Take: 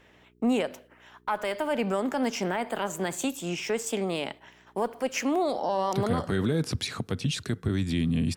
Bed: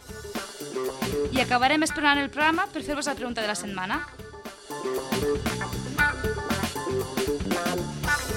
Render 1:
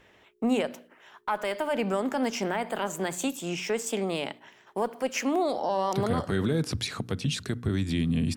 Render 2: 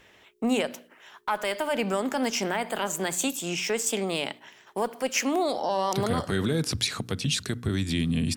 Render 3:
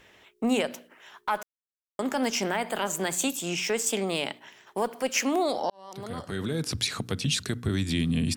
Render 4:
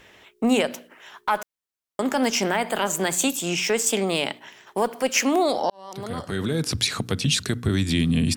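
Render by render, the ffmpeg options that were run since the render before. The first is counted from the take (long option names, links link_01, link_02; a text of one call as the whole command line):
ffmpeg -i in.wav -af "bandreject=frequency=60:width_type=h:width=4,bandreject=frequency=120:width_type=h:width=4,bandreject=frequency=180:width_type=h:width=4,bandreject=frequency=240:width_type=h:width=4,bandreject=frequency=300:width_type=h:width=4" out.wav
ffmpeg -i in.wav -af "highshelf=frequency=2300:gain=7.5" out.wav
ffmpeg -i in.wav -filter_complex "[0:a]asplit=4[link_01][link_02][link_03][link_04];[link_01]atrim=end=1.43,asetpts=PTS-STARTPTS,afade=type=out:start_time=1.426:duration=0.004:curve=hsin[link_05];[link_02]atrim=start=1.43:end=1.99,asetpts=PTS-STARTPTS,volume=0[link_06];[link_03]atrim=start=1.99:end=5.7,asetpts=PTS-STARTPTS,afade=type=in:duration=0.004:curve=hsin,afade=type=out:start_time=3.706:duration=0.004:curve=hsin[link_07];[link_04]atrim=start=5.7,asetpts=PTS-STARTPTS,afade=type=in:duration=1.3[link_08];[link_05][link_06][link_07][link_08]concat=n=4:v=0:a=1" out.wav
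ffmpeg -i in.wav -af "volume=5dB" out.wav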